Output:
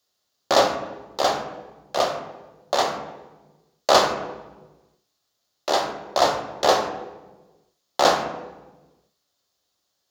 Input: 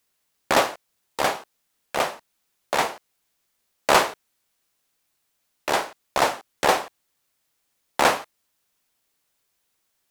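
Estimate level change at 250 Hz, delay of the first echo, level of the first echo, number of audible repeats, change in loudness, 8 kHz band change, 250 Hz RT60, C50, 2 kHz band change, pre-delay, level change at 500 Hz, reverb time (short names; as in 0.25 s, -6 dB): +1.5 dB, none, none, none, +1.0 dB, -0.5 dB, 1.5 s, 7.0 dB, -3.5 dB, 3 ms, +4.0 dB, 1.2 s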